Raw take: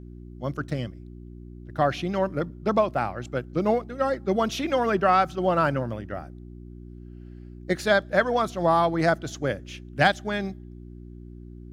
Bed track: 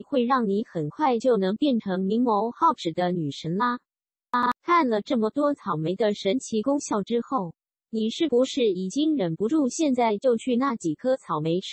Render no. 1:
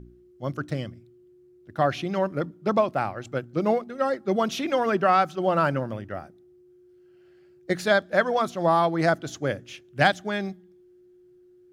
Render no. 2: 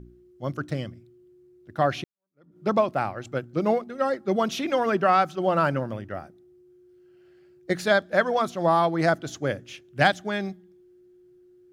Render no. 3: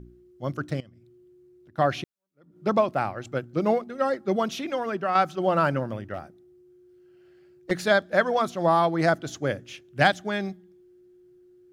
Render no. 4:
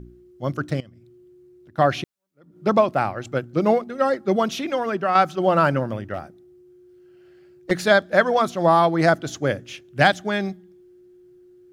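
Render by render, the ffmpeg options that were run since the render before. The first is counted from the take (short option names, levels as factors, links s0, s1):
-af "bandreject=f=60:t=h:w=4,bandreject=f=120:t=h:w=4,bandreject=f=180:t=h:w=4,bandreject=f=240:t=h:w=4,bandreject=f=300:t=h:w=4"
-filter_complex "[0:a]asplit=2[s0][s1];[s0]atrim=end=2.04,asetpts=PTS-STARTPTS,afade=t=out:st=2.036:d=0.004:c=hsin[s2];[s1]atrim=start=2.04,asetpts=PTS-STARTPTS,afade=t=in:d=0.54:c=exp[s3];[s2][s3]concat=n=2:v=0:a=1"
-filter_complex "[0:a]asettb=1/sr,asplit=3[s0][s1][s2];[s0]atrim=end=0.804[s3];[s1]atrim=start=0.8:end=1.78,asetpts=PTS-STARTPTS,afade=t=in:d=0.004:c=qsin,afade=t=out:st=0.976:d=0.004:c=qsin,acompressor=threshold=0.00251:ratio=3:attack=3.2:release=140:knee=1:detection=peak[s4];[s2]atrim=start=1.776[s5];[s3][s4]acrossfade=d=0.004:c1=hsin:c2=qsin[s6];[s6][s5]acrossfade=d=0.004:c1=qsin:c2=hsin,asettb=1/sr,asplit=3[s7][s8][s9];[s7]atrim=end=6.144[s10];[s8]atrim=start=6.14:end=7.71,asetpts=PTS-STARTPTS,afade=t=in:d=0.004:c=qsin,afade=t=out:st=1.566:d=0.004:c=qsin,volume=20,asoftclip=hard,volume=0.0501[s11];[s9]atrim=start=7.706[s12];[s10][s11]acrossfade=d=0.004:c1=hsin:c2=qsin[s13];[s13][s12]acrossfade=d=0.004:c1=qsin:c2=hsin,asplit=2[s14][s15];[s14]atrim=end=5.15,asetpts=PTS-STARTPTS,afade=t=out:st=4.27:d=0.88:c=qua:silence=0.473151[s16];[s15]atrim=start=5.15,asetpts=PTS-STARTPTS,afade=t=in:d=0.004:c=hsin:silence=0.473151[s17];[s16][s17]concat=n=2:v=0:a=1"
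-af "volume=1.68,alimiter=limit=0.708:level=0:latency=1"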